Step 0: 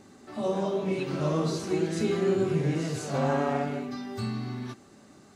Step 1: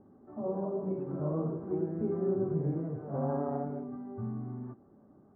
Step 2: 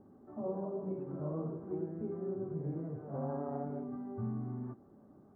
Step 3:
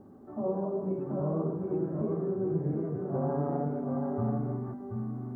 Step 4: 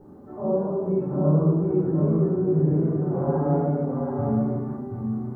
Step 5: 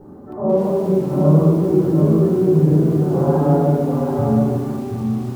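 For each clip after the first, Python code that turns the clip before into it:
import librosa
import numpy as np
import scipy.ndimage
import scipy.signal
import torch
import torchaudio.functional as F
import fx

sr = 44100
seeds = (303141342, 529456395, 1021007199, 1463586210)

y1 = scipy.signal.sosfilt(scipy.signal.bessel(6, 760.0, 'lowpass', norm='mag', fs=sr, output='sos'), x)
y1 = F.gain(torch.from_numpy(y1), -4.5).numpy()
y2 = fx.rider(y1, sr, range_db=5, speed_s=0.5)
y2 = F.gain(torch.from_numpy(y2), -5.0).numpy()
y3 = y2 + 10.0 ** (-4.5 / 20.0) * np.pad(y2, (int(731 * sr / 1000.0), 0))[:len(y2)]
y3 = F.gain(torch.from_numpy(y3), 6.5).numpy()
y4 = fx.room_shoebox(y3, sr, seeds[0], volume_m3=750.0, walls='furnished', distance_m=4.4)
y5 = fx.echo_crushed(y4, sr, ms=197, feedback_pct=55, bits=7, wet_db=-11.5)
y5 = F.gain(torch.from_numpy(y5), 7.0).numpy()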